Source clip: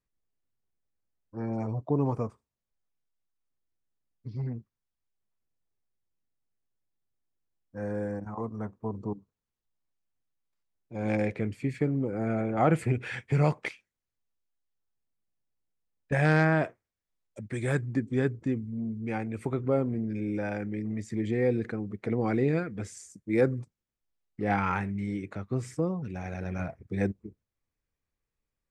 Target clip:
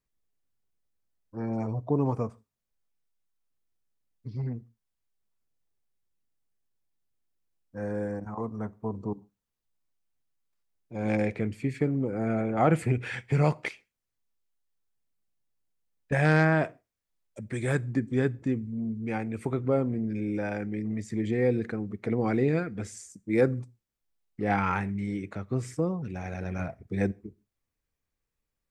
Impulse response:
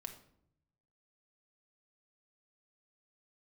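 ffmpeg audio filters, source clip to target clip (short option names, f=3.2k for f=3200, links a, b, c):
-filter_complex "[0:a]asplit=2[a][b];[b]highshelf=f=3.7k:g=9.5[c];[1:a]atrim=start_sample=2205,afade=t=out:st=0.21:d=0.01,atrim=end_sample=9702[d];[c][d]afir=irnorm=-1:irlink=0,volume=-14dB[e];[a][e]amix=inputs=2:normalize=0"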